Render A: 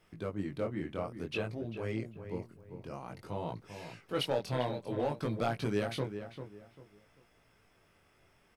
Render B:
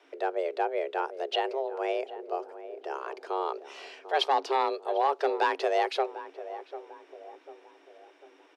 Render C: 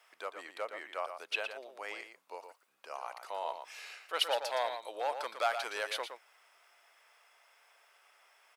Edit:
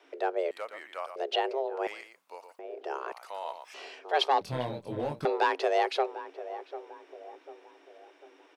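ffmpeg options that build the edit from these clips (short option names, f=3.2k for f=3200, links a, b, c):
-filter_complex "[2:a]asplit=3[a][b][c];[1:a]asplit=5[d][e][f][g][h];[d]atrim=end=0.512[i];[a]atrim=start=0.508:end=1.162[j];[e]atrim=start=1.158:end=1.872[k];[b]atrim=start=1.868:end=2.592[l];[f]atrim=start=2.588:end=3.122[m];[c]atrim=start=3.118:end=3.742[n];[g]atrim=start=3.738:end=4.412[o];[0:a]atrim=start=4.408:end=5.252[p];[h]atrim=start=5.248[q];[i][j]acrossfade=d=0.004:c1=hsin:c2=hsin[r];[r][k]acrossfade=d=0.004:c1=hsin:c2=hsin[s];[s][l]acrossfade=d=0.004:c1=hsin:c2=hsin[t];[t][m]acrossfade=d=0.004:c1=hsin:c2=hsin[u];[u][n]acrossfade=d=0.004:c1=hsin:c2=hsin[v];[v][o]acrossfade=d=0.004:c1=hsin:c2=hsin[w];[w][p]acrossfade=d=0.004:c1=hsin:c2=hsin[x];[x][q]acrossfade=d=0.004:c1=hsin:c2=hsin"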